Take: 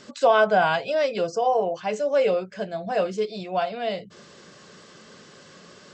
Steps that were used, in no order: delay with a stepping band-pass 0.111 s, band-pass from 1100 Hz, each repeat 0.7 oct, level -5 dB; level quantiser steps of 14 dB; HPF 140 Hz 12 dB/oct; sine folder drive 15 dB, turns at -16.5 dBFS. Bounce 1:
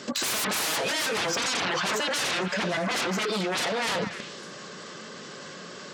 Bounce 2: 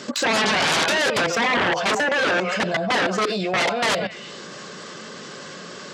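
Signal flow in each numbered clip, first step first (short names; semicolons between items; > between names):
sine folder > HPF > level quantiser > delay with a stepping band-pass; delay with a stepping band-pass > level quantiser > sine folder > HPF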